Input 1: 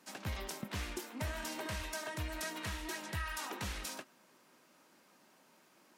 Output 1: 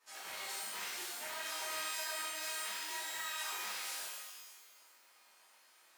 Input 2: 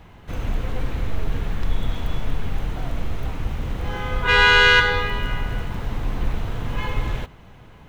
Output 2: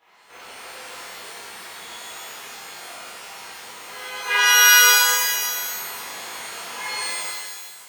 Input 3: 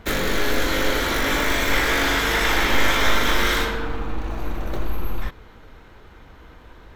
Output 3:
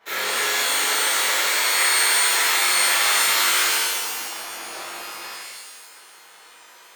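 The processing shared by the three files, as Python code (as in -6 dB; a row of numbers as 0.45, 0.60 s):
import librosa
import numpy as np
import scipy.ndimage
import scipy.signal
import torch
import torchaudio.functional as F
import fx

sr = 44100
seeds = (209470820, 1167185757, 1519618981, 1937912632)

p1 = scipy.signal.sosfilt(scipy.signal.butter(2, 740.0, 'highpass', fs=sr, output='sos'), x)
p2 = fx.rider(p1, sr, range_db=4, speed_s=2.0)
p3 = p1 + (p2 * librosa.db_to_amplitude(-1.5))
p4 = fx.rev_shimmer(p3, sr, seeds[0], rt60_s=1.2, semitones=12, shimmer_db=-2, drr_db=-11.5)
y = p4 * librosa.db_to_amplitude(-17.0)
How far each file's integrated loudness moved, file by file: +1.5, +6.0, +4.0 LU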